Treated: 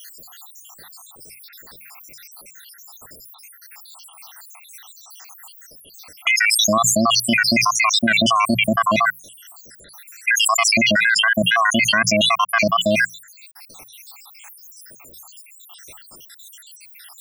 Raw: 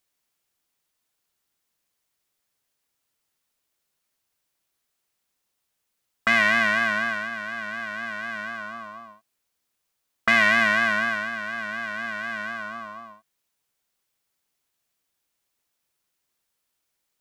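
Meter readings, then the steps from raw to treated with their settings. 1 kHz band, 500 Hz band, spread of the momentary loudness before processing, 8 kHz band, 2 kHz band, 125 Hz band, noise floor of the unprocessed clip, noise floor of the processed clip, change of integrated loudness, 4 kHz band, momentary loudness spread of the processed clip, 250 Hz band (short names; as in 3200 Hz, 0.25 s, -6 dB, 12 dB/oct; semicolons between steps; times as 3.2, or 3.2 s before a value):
+9.5 dB, +11.0 dB, 17 LU, +25.0 dB, +4.5 dB, +15.0 dB, -79 dBFS, -47 dBFS, +7.5 dB, +16.0 dB, 4 LU, +13.0 dB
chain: random spectral dropouts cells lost 85%; notches 60/120/180 Hz; fast leveller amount 100%; gain +3.5 dB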